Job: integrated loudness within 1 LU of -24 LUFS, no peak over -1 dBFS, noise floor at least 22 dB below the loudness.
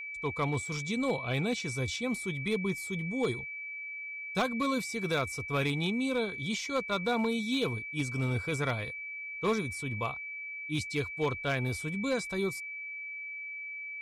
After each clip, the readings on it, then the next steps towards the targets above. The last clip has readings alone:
clipped 0.5%; flat tops at -22.5 dBFS; steady tone 2300 Hz; tone level -38 dBFS; loudness -32.5 LUFS; peak -22.5 dBFS; loudness target -24.0 LUFS
-> clip repair -22.5 dBFS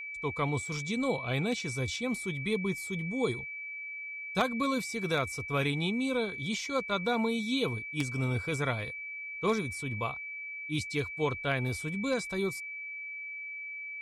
clipped 0.0%; steady tone 2300 Hz; tone level -38 dBFS
-> notch 2300 Hz, Q 30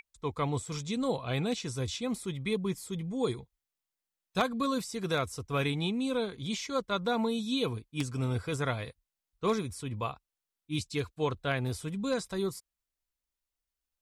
steady tone none; loudness -33.0 LUFS; peak -13.5 dBFS; loudness target -24.0 LUFS
-> gain +9 dB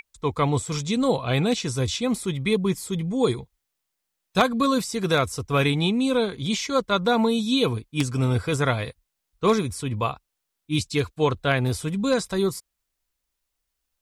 loudness -24.0 LUFS; peak -4.5 dBFS; noise floor -81 dBFS

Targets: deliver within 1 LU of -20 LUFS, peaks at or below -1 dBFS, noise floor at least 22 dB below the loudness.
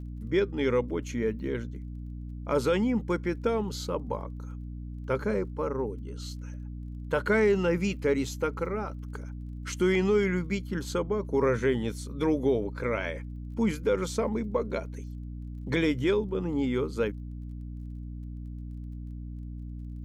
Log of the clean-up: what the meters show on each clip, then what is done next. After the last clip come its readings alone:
ticks 24/s; hum 60 Hz; harmonics up to 300 Hz; hum level -36 dBFS; loudness -29.0 LUFS; peak -15.0 dBFS; loudness target -20.0 LUFS
-> de-click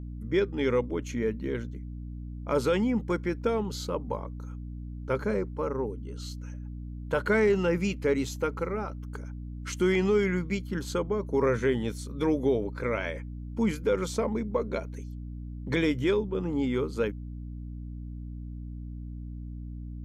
ticks 0.050/s; hum 60 Hz; harmonics up to 300 Hz; hum level -36 dBFS
-> de-hum 60 Hz, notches 5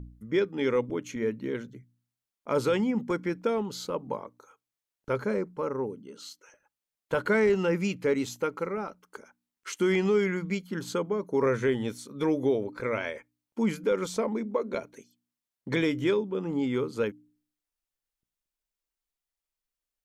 hum none; loudness -29.0 LUFS; peak -15.5 dBFS; loudness target -20.0 LUFS
-> gain +9 dB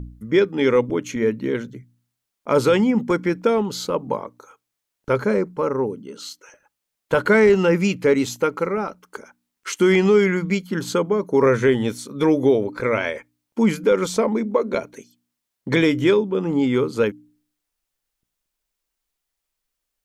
loudness -20.0 LUFS; peak -6.5 dBFS; noise floor -81 dBFS

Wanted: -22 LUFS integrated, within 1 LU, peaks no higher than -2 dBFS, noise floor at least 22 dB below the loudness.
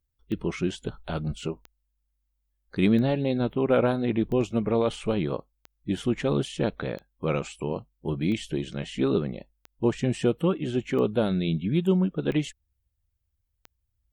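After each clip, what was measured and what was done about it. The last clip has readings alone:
clicks 11; loudness -27.0 LUFS; peak -10.0 dBFS; loudness target -22.0 LUFS
-> de-click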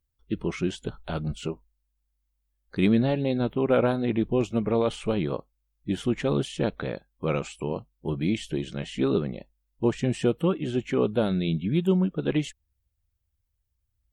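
clicks 0; loudness -27.0 LUFS; peak -10.0 dBFS; loudness target -22.0 LUFS
-> gain +5 dB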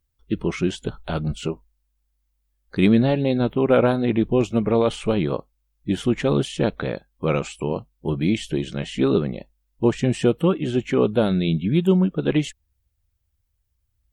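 loudness -22.0 LUFS; peak -5.0 dBFS; noise floor -72 dBFS

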